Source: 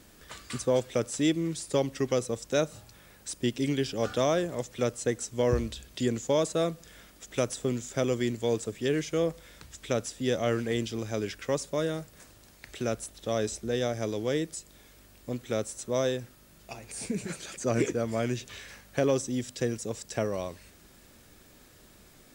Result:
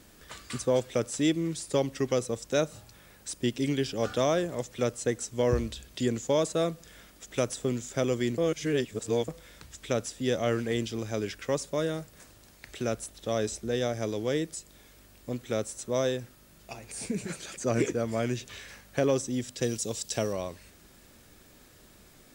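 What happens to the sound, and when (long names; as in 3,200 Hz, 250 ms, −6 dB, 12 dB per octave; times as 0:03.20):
0:08.38–0:09.28: reverse
0:19.62–0:20.33: high shelf with overshoot 2,600 Hz +6.5 dB, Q 1.5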